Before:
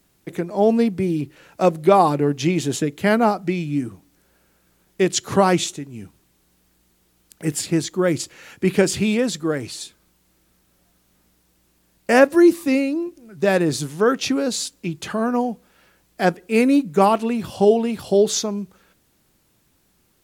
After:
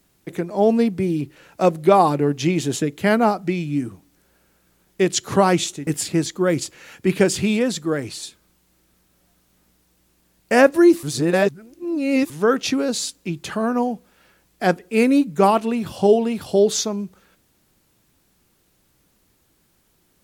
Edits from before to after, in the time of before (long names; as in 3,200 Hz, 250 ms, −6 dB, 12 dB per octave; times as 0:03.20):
0:05.87–0:07.45: remove
0:12.61–0:13.88: reverse